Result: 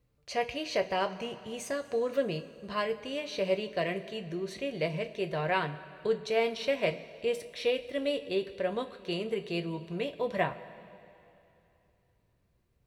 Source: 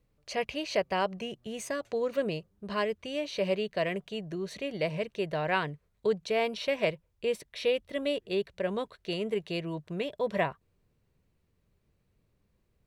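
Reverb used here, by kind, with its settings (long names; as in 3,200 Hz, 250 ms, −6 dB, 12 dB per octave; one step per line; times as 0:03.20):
coupled-rooms reverb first 0.22 s, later 2.9 s, from −18 dB, DRR 5.5 dB
level −1.5 dB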